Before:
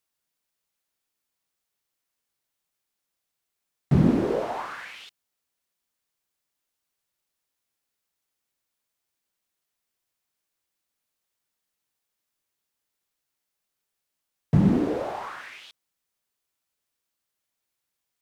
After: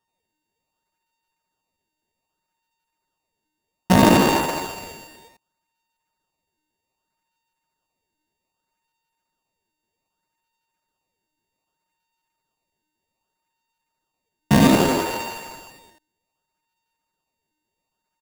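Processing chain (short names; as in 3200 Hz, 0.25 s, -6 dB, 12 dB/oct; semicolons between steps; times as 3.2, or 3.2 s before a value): sample sorter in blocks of 64 samples; loudspeakers at several distances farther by 29 m -4 dB, 69 m -7 dB, 96 m -11 dB; pitch shift +5 st; in parallel at -3 dB: decimation with a swept rate 20×, swing 160% 0.64 Hz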